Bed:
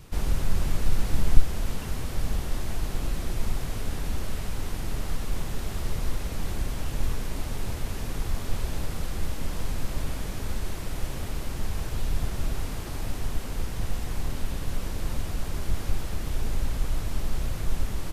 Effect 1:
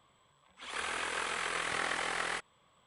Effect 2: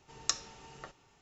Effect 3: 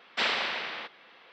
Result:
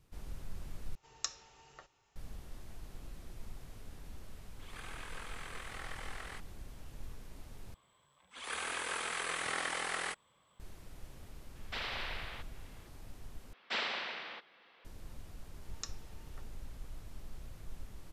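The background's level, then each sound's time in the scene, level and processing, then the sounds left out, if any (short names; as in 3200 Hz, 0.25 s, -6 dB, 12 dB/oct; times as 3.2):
bed -19.5 dB
0.95 replace with 2 -6.5 dB + bell 210 Hz -9 dB 1.5 oct
4 add 1 -12.5 dB
7.74 replace with 1 -3 dB + high shelf 7900 Hz +7.5 dB
11.55 add 3 -9 dB + limiter -21.5 dBFS
13.53 replace with 3 -8 dB
15.54 add 2 -13 dB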